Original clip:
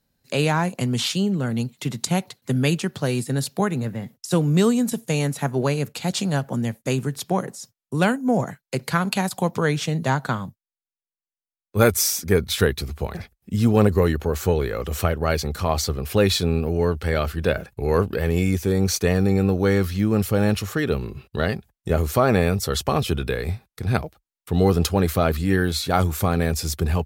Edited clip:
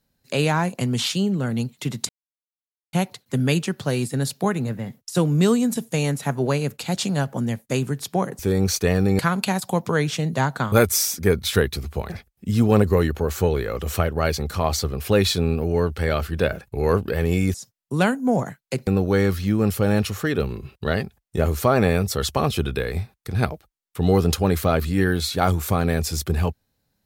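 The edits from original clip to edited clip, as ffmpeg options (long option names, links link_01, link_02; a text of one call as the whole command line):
ffmpeg -i in.wav -filter_complex "[0:a]asplit=7[link_01][link_02][link_03][link_04][link_05][link_06][link_07];[link_01]atrim=end=2.09,asetpts=PTS-STARTPTS,afade=type=out:start_time=2.086:duration=0.004:curve=hsin,apad=pad_dur=0.84[link_08];[link_02]atrim=start=2.09:end=7.552,asetpts=PTS-STARTPTS,afade=type=in:duration=0.004:curve=hsin[link_09];[link_03]atrim=start=18.588:end=19.392[link_10];[link_04]atrim=start=8.878:end=10.412[link_11];[link_05]atrim=start=11.768:end=18.592[link_12];[link_06]atrim=start=7.548:end=8.882[link_13];[link_07]atrim=start=19.388[link_14];[link_08][link_09]concat=n=2:v=0:a=1[link_15];[link_15][link_10]acrossfade=duration=0.004:curve1=hsin:curve2=hsin[link_16];[link_16][link_11]acrossfade=duration=0.004:curve1=hsin:curve2=hsin[link_17];[link_17][link_12]acrossfade=duration=0.004:curve1=hsin:curve2=hsin[link_18];[link_18][link_13]acrossfade=duration=0.004:curve1=hsin:curve2=hsin[link_19];[link_19][link_14]acrossfade=duration=0.004:curve1=hsin:curve2=hsin" out.wav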